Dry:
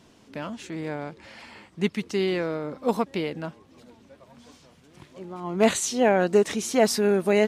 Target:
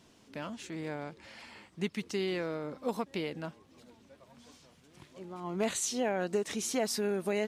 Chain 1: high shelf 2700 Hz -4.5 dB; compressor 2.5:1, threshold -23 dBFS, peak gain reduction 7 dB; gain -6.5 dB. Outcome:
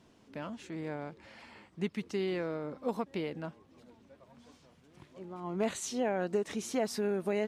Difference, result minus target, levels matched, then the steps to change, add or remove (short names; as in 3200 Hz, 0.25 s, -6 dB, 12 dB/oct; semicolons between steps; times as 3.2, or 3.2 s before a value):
4000 Hz band -4.0 dB
change: high shelf 2700 Hz +4 dB